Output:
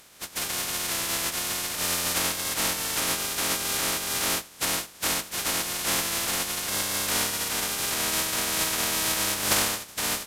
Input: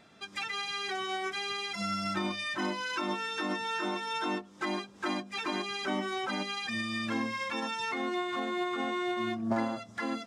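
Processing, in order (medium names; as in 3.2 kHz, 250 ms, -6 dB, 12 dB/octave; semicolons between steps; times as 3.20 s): spectral contrast reduction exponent 0.12; resampled via 32 kHz; formant-preserving pitch shift -2 st; trim +8 dB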